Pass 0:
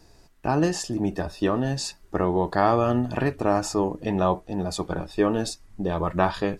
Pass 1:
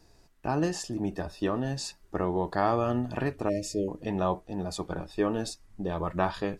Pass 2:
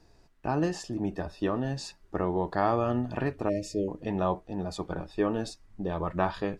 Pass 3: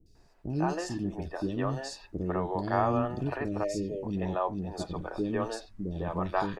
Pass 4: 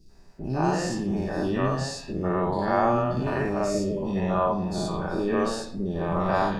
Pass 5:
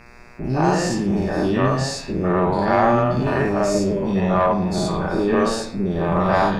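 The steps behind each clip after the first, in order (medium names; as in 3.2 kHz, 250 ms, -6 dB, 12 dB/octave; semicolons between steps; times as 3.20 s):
spectral selection erased 3.49–3.88 s, 640–1800 Hz; trim -5.5 dB
treble shelf 6.8 kHz -11 dB
three bands offset in time lows, highs, mids 60/150 ms, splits 400/3200 Hz
every event in the spectrogram widened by 120 ms; reverberation RT60 0.65 s, pre-delay 5 ms, DRR 6 dB
single-diode clipper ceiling -16 dBFS; mains buzz 120 Hz, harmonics 22, -56 dBFS 0 dB/octave; trim +7.5 dB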